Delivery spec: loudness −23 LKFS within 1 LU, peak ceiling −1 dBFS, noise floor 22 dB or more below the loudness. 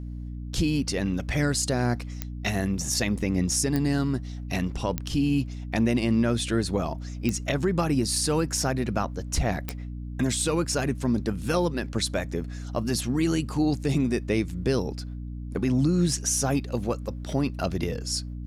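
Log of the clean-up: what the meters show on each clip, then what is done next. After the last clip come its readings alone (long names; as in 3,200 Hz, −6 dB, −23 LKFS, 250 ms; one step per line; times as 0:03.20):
number of clicks 5; mains hum 60 Hz; hum harmonics up to 300 Hz; level of the hum −32 dBFS; integrated loudness −26.5 LKFS; sample peak −8.0 dBFS; target loudness −23.0 LKFS
→ click removal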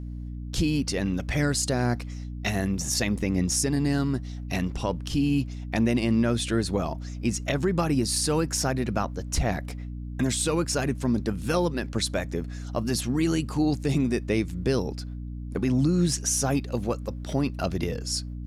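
number of clicks 0; mains hum 60 Hz; hum harmonics up to 300 Hz; level of the hum −32 dBFS
→ mains-hum notches 60/120/180/240/300 Hz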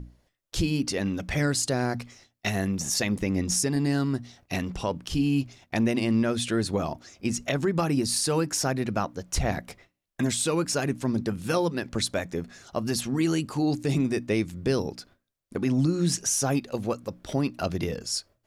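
mains hum none found; integrated loudness −27.5 LKFS; sample peak −13.5 dBFS; target loudness −23.0 LKFS
→ level +4.5 dB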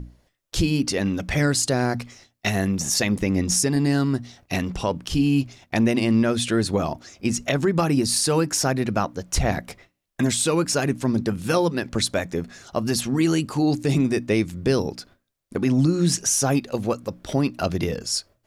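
integrated loudness −23.0 LKFS; sample peak −9.0 dBFS; background noise floor −72 dBFS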